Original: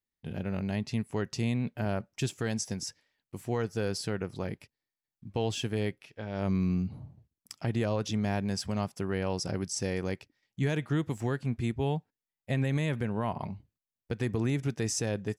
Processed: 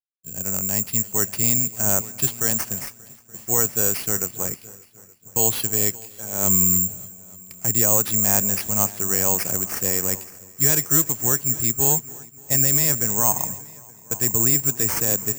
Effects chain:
dynamic equaliser 1,200 Hz, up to +6 dB, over −48 dBFS, Q 0.81
bad sample-rate conversion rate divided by 6×, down none, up zero stuff
echo machine with several playback heads 291 ms, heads all three, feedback 45%, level −19 dB
multiband upward and downward expander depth 70%
level +1.5 dB

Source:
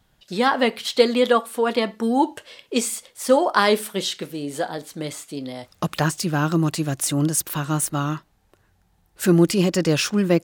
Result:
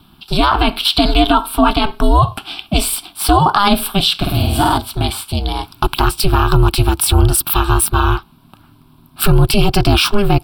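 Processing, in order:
in parallel at −1 dB: downward compressor, threshold −27 dBFS, peak gain reduction 16.5 dB
on the sum: ring modulation 200 Hz
phaser with its sweep stopped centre 1,900 Hz, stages 6
0:04.14–0:04.78: flutter between parallel walls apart 8.6 metres, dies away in 1.1 s
boost into a limiter +16 dB
level −1 dB

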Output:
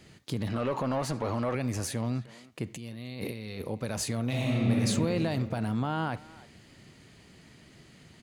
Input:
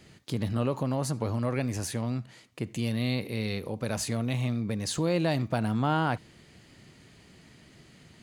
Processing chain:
brickwall limiter −20.5 dBFS, peak gain reduction 7.5 dB
0:00.47–0:01.55: mid-hump overdrive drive 17 dB, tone 2,100 Hz, clips at −20.5 dBFS
0:02.76–0:03.62: compressor whose output falls as the input rises −39 dBFS, ratio −1
0:04.27–0:04.82: thrown reverb, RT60 2.6 s, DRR −4.5 dB
far-end echo of a speakerphone 310 ms, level −17 dB

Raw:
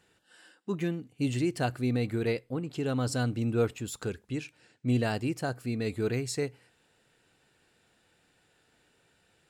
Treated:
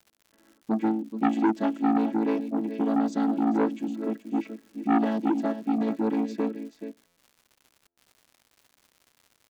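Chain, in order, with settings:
channel vocoder with a chord as carrier major triad, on A3
noise gate with hold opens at −59 dBFS
low-pass that shuts in the quiet parts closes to 1,000 Hz, open at −27 dBFS
parametric band 150 Hz +7.5 dB 1.5 octaves
surface crackle 170 per second −49 dBFS
single-tap delay 429 ms −11 dB
buffer that repeats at 0:07.06/0:07.87, samples 512, times 8
saturating transformer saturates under 850 Hz
level +4.5 dB

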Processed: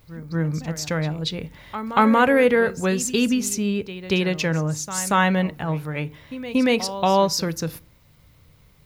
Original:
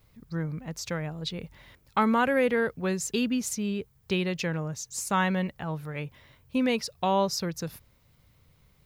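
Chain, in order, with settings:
echo ahead of the sound 233 ms −14 dB
feedback delay network reverb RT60 0.37 s, low-frequency decay 1.3×, high-frequency decay 0.6×, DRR 14.5 dB
level +7 dB

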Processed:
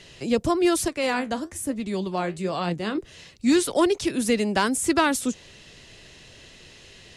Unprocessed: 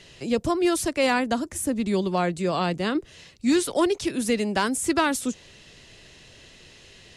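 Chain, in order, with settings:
0:00.88–0:02.98: flanger 1.1 Hz, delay 5.3 ms, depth 9.9 ms, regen +63%
level +1.5 dB

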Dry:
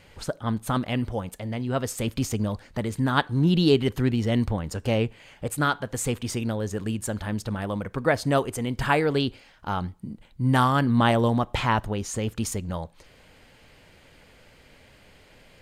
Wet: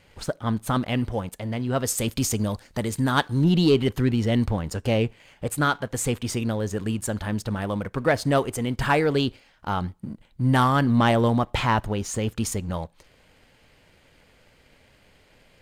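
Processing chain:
0:01.85–0:03.44: bass and treble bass −1 dB, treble +7 dB
leveller curve on the samples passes 1
level −2 dB

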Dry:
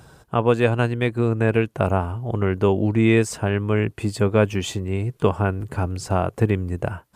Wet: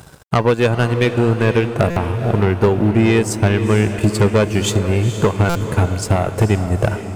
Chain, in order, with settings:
high-shelf EQ 6,000 Hz +5.5 dB
in parallel at +2.5 dB: brickwall limiter −16 dBFS, peak gain reduction 10.5 dB
on the sum: transient designer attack +8 dB, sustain −9 dB
soft clipping −9 dBFS, distortion −10 dB
tuned comb filter 210 Hz, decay 0.78 s, harmonics odd, mix 50%
dead-zone distortion −52.5 dBFS
on a send: feedback delay with all-pass diffusion 471 ms, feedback 53%, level −9.5 dB
on the sum: buffer that repeats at 0:01.90/0:05.49, samples 256, times 10
level +7 dB

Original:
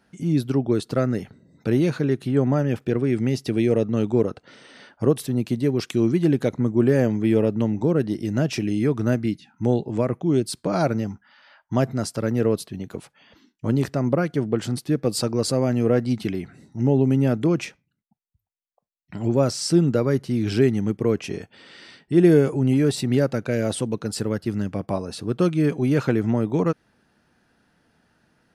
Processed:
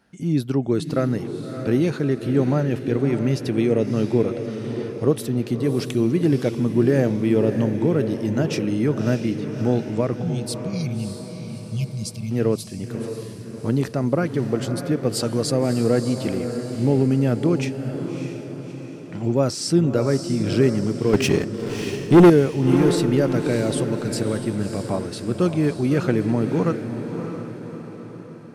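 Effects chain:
0:10.23–0:12.31: time-frequency box erased 220–2,100 Hz
0:21.13–0:22.30: leveller curve on the samples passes 3
on a send: feedback delay with all-pass diffusion 617 ms, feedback 52%, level −8 dB

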